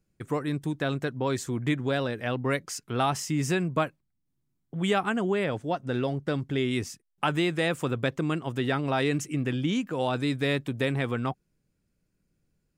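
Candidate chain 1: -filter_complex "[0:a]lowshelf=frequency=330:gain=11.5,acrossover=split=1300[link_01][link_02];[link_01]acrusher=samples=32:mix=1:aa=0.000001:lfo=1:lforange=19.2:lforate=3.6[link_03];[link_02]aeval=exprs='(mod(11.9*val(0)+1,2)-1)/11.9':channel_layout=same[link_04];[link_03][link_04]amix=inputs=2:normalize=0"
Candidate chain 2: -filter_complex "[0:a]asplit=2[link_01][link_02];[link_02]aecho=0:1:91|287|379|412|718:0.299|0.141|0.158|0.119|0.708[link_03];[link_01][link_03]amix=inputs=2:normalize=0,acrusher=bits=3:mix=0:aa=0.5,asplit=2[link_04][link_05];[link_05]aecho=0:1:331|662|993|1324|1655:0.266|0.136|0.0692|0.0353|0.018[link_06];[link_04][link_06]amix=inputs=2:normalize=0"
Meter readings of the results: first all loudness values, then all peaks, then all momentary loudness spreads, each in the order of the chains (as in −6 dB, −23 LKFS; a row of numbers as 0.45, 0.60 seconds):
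−22.5, −26.5 LKFS; −7.5, −10.5 dBFS; 5, 8 LU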